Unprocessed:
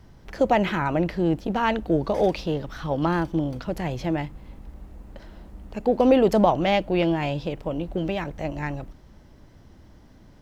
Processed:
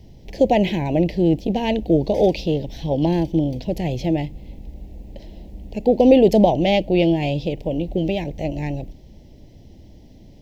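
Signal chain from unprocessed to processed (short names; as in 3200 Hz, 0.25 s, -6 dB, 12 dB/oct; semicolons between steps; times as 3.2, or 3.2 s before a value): Butterworth band-stop 1300 Hz, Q 0.79; bell 9100 Hz -7.5 dB 0.6 oct; gain +5.5 dB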